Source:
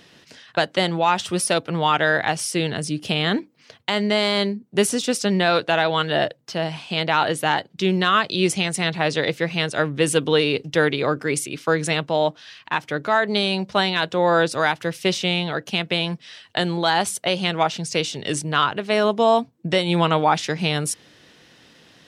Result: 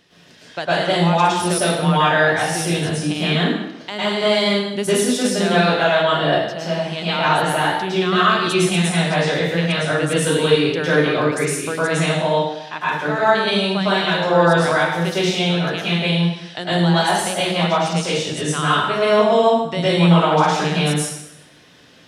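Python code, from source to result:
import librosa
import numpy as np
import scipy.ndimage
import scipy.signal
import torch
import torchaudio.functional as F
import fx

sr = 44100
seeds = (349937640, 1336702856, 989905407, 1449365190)

y = fx.rev_plate(x, sr, seeds[0], rt60_s=0.91, hf_ratio=0.85, predelay_ms=95, drr_db=-9.5)
y = y * 10.0 ** (-7.0 / 20.0)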